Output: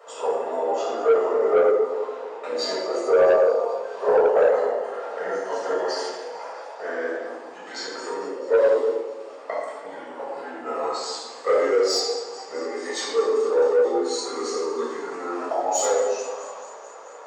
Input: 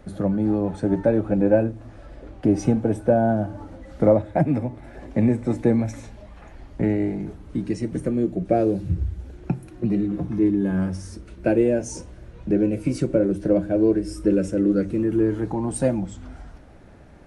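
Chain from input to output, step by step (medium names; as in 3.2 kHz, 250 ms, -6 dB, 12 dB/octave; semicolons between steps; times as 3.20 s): rotating-head pitch shifter -4 st; in parallel at -3 dB: compression, threshold -27 dBFS, peak gain reduction 14 dB; on the sum: elliptic high-pass 450 Hz, stop band 80 dB; dynamic bell 5.7 kHz, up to +6 dB, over -51 dBFS, Q 0.71; on a send: feedback echo behind a high-pass 218 ms, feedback 72%, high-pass 5.3 kHz, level -14 dB; on the sum: simulated room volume 860 m³, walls mixed, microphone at 6.3 m; saturation -8 dBFS, distortion -14 dB; peaking EQ 870 Hz +13.5 dB 0.52 oct; trim -5 dB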